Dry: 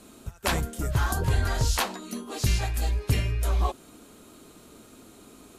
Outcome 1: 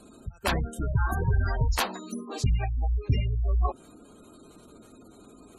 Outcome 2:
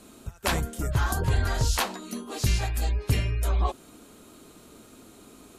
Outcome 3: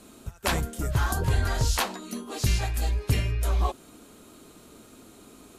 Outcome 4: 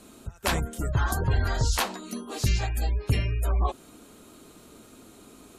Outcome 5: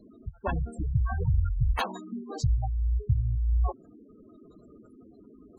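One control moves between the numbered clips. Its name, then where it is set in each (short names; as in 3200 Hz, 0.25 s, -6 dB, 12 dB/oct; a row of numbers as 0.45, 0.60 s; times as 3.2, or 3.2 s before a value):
spectral gate, under each frame's peak: -20, -45, -60, -35, -10 dB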